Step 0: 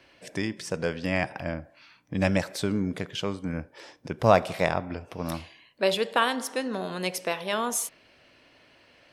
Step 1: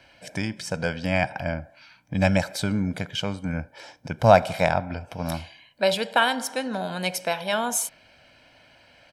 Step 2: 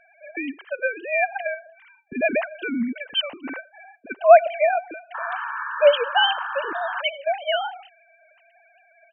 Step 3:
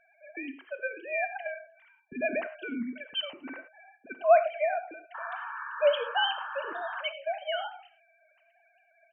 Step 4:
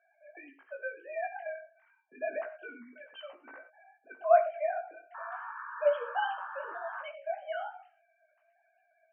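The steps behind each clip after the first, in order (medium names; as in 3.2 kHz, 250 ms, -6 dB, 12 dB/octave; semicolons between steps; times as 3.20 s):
comb 1.3 ms, depth 59%; trim +2 dB
formants replaced by sine waves; dynamic bell 3 kHz, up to +6 dB, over -49 dBFS, Q 4.3; painted sound noise, 5.14–7.02 s, 860–1800 Hz -32 dBFS; trim +2 dB
reverberation, pre-delay 3 ms, DRR 9 dB; trim -9 dB
chorus 0.32 Hz, delay 16.5 ms, depth 4 ms; Butterworth band-pass 900 Hz, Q 0.74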